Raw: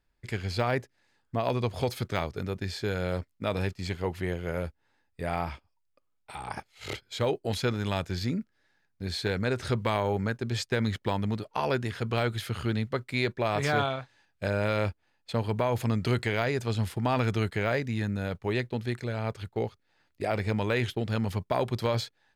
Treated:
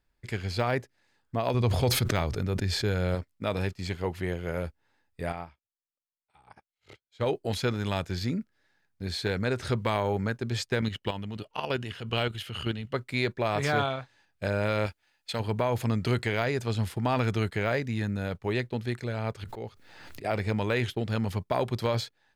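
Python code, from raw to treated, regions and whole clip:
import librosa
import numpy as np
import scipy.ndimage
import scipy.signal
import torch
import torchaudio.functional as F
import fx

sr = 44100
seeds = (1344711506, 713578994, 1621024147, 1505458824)

y = fx.chain(x, sr, fx.low_shelf(hz=150.0, db=7.5),
    fx.sustainer(db_per_s=36.0), at=(1.54, 3.15))
y = fx.chain(y, sr, fx.high_shelf(hz=10000.0, db=-10.5),
    fx.upward_expand(threshold_db=-48.0, expansion=2.5), at=(5.32, 7.26))
y = fx.chain(y, sr, fx.peak_eq(hz=2900.0, db=15.0, octaves=0.23),
    fx.level_steps(step_db=9), at=(10.81, 12.94))
y = fx.chain(y, sr, fx.tilt_shelf(db=-7.0, hz=880.0),
    fx.notch(hz=1100.0, q=7.7), at=(14.86, 15.4))
y = fx.chain(y, sr, fx.auto_swell(attack_ms=186.0),
    fx.pre_swell(db_per_s=36.0), at=(19.44, 20.25))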